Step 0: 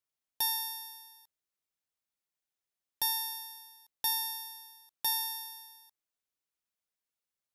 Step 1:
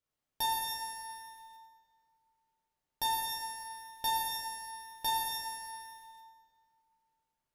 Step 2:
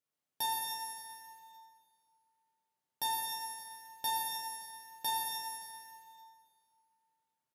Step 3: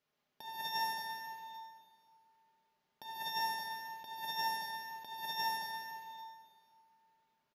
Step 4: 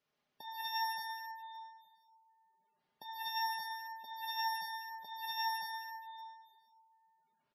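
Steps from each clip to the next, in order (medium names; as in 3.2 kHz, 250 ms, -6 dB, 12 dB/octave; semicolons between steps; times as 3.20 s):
tilt EQ -2 dB/octave; plate-style reverb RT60 2.2 s, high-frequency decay 0.65×, DRR -5.5 dB; bit-crushed delay 97 ms, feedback 35%, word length 9-bit, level -14 dB
high-pass 130 Hz 12 dB/octave; peaking EQ 11 kHz +3 dB 0.92 oct; feedback delay 285 ms, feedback 46%, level -17.5 dB; trim -3 dB
comb 4.9 ms, depth 41%; compressor with a negative ratio -41 dBFS, ratio -0.5; boxcar filter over 5 samples; trim +6.5 dB
spectral gate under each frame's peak -20 dB strong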